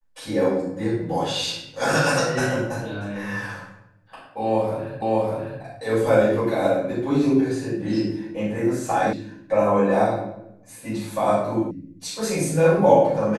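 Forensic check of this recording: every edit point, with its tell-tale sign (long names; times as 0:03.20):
0:05.02: the same again, the last 0.6 s
0:09.13: cut off before it has died away
0:11.71: cut off before it has died away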